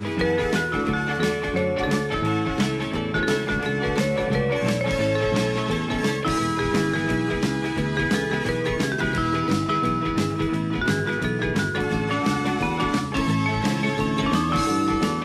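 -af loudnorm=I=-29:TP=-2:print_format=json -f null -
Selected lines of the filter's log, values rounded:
"input_i" : "-23.2",
"input_tp" : "-10.6",
"input_lra" : "0.9",
"input_thresh" : "-33.2",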